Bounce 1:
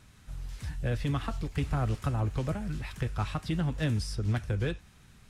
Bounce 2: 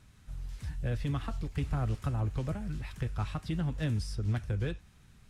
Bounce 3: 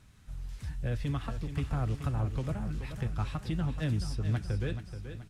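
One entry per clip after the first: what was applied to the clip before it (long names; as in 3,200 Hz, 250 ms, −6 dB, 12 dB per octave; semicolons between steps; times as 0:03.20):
low-shelf EQ 190 Hz +4.5 dB; level −5 dB
repeating echo 429 ms, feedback 49%, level −10 dB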